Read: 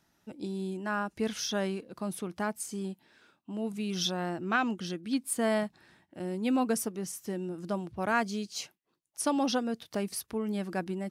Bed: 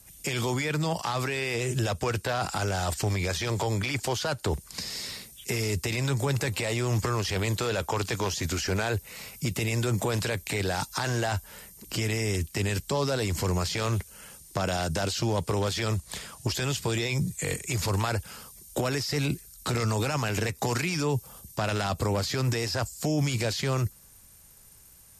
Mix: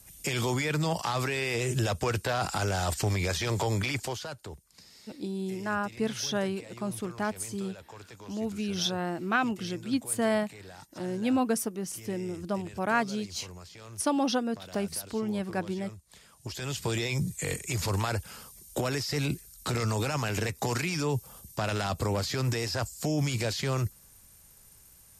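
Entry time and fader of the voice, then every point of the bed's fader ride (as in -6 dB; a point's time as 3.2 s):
4.80 s, +1.5 dB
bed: 3.89 s -0.5 dB
4.67 s -19 dB
16.07 s -19 dB
16.85 s -2 dB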